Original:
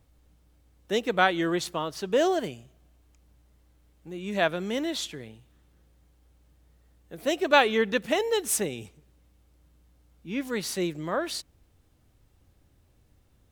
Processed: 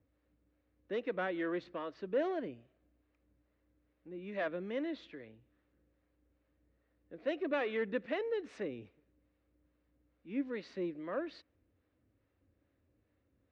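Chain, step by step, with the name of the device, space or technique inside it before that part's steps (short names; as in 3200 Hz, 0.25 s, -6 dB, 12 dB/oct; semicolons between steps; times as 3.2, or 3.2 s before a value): guitar amplifier with harmonic tremolo (harmonic tremolo 2.4 Hz, depth 50%, crossover 460 Hz; soft clip -21.5 dBFS, distortion -13 dB; speaker cabinet 83–3400 Hz, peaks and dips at 150 Hz -8 dB, 290 Hz +7 dB, 530 Hz +6 dB, 830 Hz -6 dB, 1800 Hz +3 dB, 3200 Hz -7 dB); 10.51–11.04 dynamic EQ 1400 Hz, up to -4 dB, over -45 dBFS, Q 0.95; gain -8 dB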